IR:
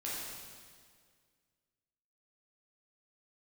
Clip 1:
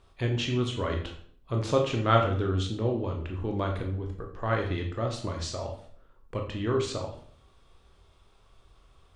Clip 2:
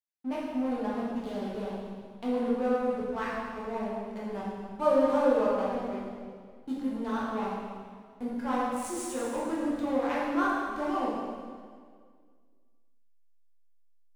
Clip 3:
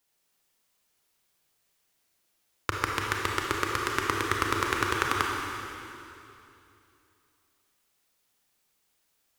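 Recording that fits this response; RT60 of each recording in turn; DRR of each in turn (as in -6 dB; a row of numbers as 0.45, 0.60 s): 2; 0.60, 1.9, 2.8 s; 1.5, -7.5, -1.0 dB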